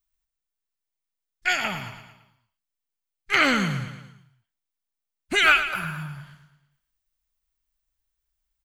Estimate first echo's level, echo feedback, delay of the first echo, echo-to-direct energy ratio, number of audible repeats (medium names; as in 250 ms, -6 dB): -11.0 dB, 51%, 112 ms, -9.5 dB, 5